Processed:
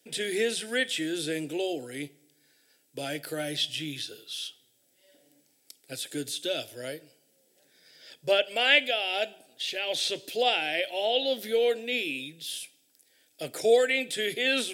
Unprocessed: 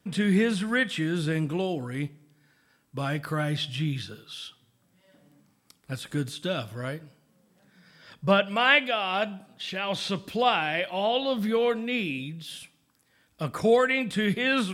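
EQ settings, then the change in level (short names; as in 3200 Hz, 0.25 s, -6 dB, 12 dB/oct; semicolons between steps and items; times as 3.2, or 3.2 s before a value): HPF 160 Hz 24 dB/oct; high shelf 3200 Hz +8.5 dB; fixed phaser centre 460 Hz, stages 4; 0.0 dB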